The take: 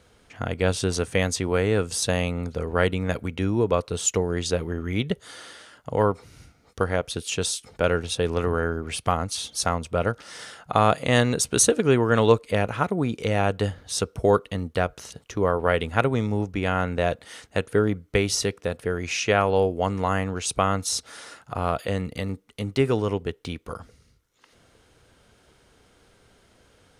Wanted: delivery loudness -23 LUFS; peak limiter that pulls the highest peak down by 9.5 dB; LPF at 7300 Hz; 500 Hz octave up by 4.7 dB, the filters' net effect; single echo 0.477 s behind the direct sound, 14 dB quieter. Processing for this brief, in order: LPF 7300 Hz; bell 500 Hz +5.5 dB; limiter -9.5 dBFS; echo 0.477 s -14 dB; gain +1 dB

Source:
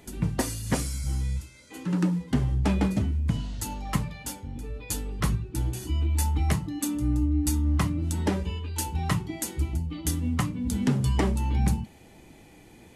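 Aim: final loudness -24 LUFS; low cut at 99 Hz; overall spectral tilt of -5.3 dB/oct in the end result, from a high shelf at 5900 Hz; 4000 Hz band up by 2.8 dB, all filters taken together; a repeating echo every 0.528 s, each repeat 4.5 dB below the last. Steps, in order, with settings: HPF 99 Hz; bell 4000 Hz +5.5 dB; high shelf 5900 Hz -4.5 dB; feedback echo 0.528 s, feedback 60%, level -4.5 dB; gain +4.5 dB

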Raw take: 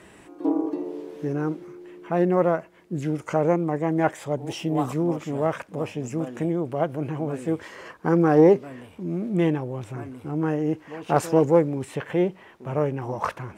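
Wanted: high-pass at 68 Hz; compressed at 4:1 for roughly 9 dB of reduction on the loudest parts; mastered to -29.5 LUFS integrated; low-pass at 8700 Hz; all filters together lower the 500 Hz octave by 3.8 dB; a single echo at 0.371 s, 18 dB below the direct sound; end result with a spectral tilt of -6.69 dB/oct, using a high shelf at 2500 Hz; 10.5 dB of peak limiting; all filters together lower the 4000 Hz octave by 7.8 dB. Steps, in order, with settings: HPF 68 Hz; LPF 8700 Hz; bell 500 Hz -4.5 dB; high shelf 2500 Hz -4 dB; bell 4000 Hz -8 dB; compressor 4:1, threshold -24 dBFS; limiter -23 dBFS; echo 0.371 s -18 dB; gain +5 dB

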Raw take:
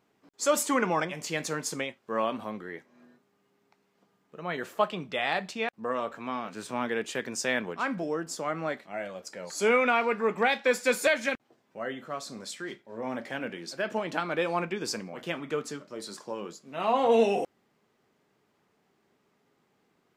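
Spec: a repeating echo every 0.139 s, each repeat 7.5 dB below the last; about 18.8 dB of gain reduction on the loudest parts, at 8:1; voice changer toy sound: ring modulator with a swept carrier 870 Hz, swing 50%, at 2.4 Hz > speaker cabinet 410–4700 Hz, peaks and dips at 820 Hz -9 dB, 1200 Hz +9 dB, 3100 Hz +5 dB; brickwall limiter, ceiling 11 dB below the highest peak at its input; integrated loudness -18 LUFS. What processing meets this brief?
compressor 8:1, threshold -39 dBFS; limiter -36 dBFS; feedback echo 0.139 s, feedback 42%, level -7.5 dB; ring modulator with a swept carrier 870 Hz, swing 50%, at 2.4 Hz; speaker cabinet 410–4700 Hz, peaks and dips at 820 Hz -9 dB, 1200 Hz +9 dB, 3100 Hz +5 dB; gain +29.5 dB

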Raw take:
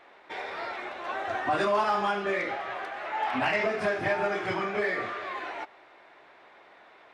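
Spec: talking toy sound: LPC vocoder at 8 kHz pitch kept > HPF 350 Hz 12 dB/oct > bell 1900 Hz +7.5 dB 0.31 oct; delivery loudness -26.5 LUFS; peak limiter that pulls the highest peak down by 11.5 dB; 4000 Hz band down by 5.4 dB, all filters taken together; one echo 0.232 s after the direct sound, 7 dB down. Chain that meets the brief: bell 4000 Hz -8.5 dB; limiter -28.5 dBFS; echo 0.232 s -7 dB; LPC vocoder at 8 kHz pitch kept; HPF 350 Hz 12 dB/oct; bell 1900 Hz +7.5 dB 0.31 oct; gain +9 dB

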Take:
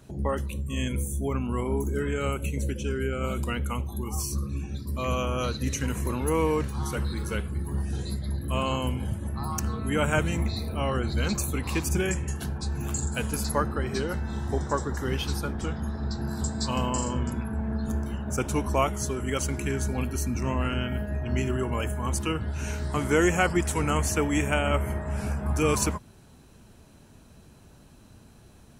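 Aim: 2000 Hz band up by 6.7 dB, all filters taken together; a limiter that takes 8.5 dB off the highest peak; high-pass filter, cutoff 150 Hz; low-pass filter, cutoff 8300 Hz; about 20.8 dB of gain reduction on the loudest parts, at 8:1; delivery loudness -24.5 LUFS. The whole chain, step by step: HPF 150 Hz; LPF 8300 Hz; bell 2000 Hz +9 dB; compressor 8:1, threshold -38 dBFS; gain +17.5 dB; limiter -14 dBFS

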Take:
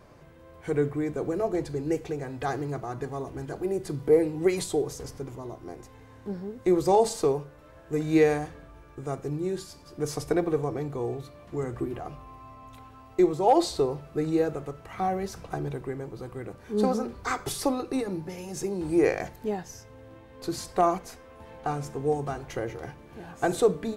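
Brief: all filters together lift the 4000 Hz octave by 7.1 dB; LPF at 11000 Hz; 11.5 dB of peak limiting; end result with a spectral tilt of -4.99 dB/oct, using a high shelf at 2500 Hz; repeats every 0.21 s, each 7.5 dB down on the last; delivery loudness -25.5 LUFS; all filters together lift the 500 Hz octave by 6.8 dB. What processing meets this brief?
LPF 11000 Hz; bell 500 Hz +8 dB; high shelf 2500 Hz +5.5 dB; bell 4000 Hz +3.5 dB; limiter -14.5 dBFS; feedback echo 0.21 s, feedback 42%, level -7.5 dB; gain +0.5 dB

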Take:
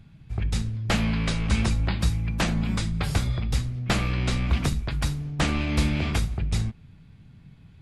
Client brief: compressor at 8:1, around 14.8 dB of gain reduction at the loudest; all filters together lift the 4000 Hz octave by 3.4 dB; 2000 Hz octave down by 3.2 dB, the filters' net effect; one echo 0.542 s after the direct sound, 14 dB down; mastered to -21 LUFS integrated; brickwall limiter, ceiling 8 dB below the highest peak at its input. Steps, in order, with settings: bell 2000 Hz -6 dB; bell 4000 Hz +6 dB; compressor 8:1, threshold -34 dBFS; limiter -29.5 dBFS; echo 0.542 s -14 dB; gain +18.5 dB

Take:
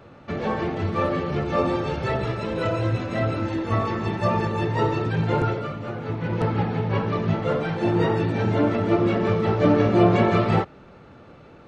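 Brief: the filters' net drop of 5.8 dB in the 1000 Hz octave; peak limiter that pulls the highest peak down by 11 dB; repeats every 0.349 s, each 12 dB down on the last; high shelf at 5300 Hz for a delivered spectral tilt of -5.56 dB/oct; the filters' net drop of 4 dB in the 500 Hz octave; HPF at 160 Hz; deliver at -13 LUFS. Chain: HPF 160 Hz; bell 500 Hz -3.5 dB; bell 1000 Hz -7 dB; high shelf 5300 Hz +7 dB; limiter -20 dBFS; feedback echo 0.349 s, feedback 25%, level -12 dB; gain +16.5 dB

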